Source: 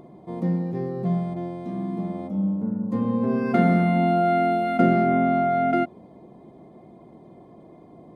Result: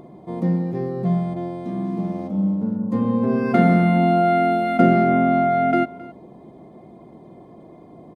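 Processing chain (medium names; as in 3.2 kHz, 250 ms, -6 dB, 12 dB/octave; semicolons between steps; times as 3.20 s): 1.85–2.76 s: median filter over 15 samples; on a send: delay 267 ms -20 dB; on the sum: trim +3.5 dB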